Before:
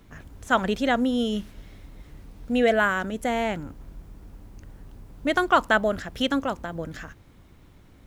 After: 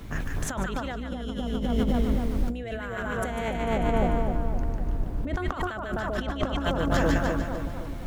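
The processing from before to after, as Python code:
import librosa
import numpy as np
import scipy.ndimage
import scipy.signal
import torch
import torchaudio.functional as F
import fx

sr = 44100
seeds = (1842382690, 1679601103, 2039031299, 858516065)

y = fx.octave_divider(x, sr, octaves=2, level_db=2.0)
y = fx.high_shelf(y, sr, hz=2500.0, db=-10.5, at=(3.48, 5.54))
y = fx.echo_split(y, sr, split_hz=1200.0, low_ms=257, high_ms=148, feedback_pct=52, wet_db=-3)
y = fx.over_compress(y, sr, threshold_db=-31.0, ratio=-1.0)
y = fx.high_shelf(y, sr, hz=5200.0, db=-8.0, at=(6.17, 6.58))
y = y * librosa.db_to_amplitude(3.5)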